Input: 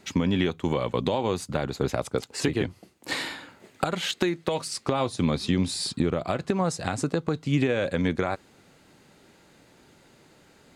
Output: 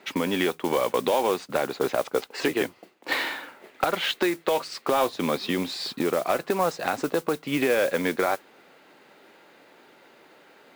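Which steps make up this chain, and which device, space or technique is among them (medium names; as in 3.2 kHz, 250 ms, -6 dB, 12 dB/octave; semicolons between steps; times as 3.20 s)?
carbon microphone (band-pass 390–3200 Hz; saturation -17.5 dBFS, distortion -20 dB; modulation noise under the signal 17 dB); trim +6 dB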